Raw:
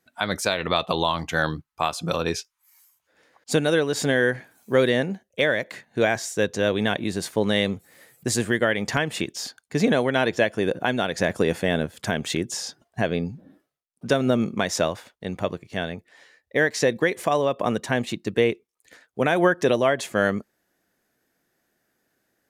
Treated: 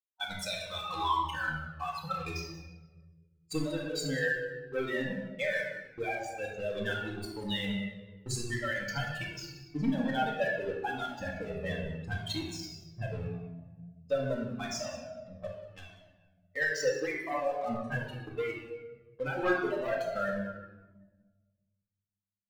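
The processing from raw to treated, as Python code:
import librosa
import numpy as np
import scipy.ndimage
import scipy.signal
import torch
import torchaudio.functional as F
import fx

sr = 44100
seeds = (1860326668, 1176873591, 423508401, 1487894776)

p1 = fx.bin_expand(x, sr, power=3.0)
p2 = fx.lowpass(p1, sr, hz=2100.0, slope=6)
p3 = fx.low_shelf(p2, sr, hz=260.0, db=-8.0)
p4 = fx.leveller(p3, sr, passes=2)
p5 = fx.over_compress(p4, sr, threshold_db=-36.0, ratio=-1.0)
p6 = p4 + (p5 * librosa.db_to_amplitude(0.0))
p7 = p6 + 10.0 ** (-17.0 / 20.0) * np.pad(p6, (int(185 * sr / 1000.0), 0))[:len(p6)]
p8 = fx.room_shoebox(p7, sr, seeds[0], volume_m3=870.0, walls='mixed', distance_m=2.1)
p9 = fx.comb_cascade(p8, sr, direction='falling', hz=0.81)
y = p9 * librosa.db_to_amplitude(-7.0)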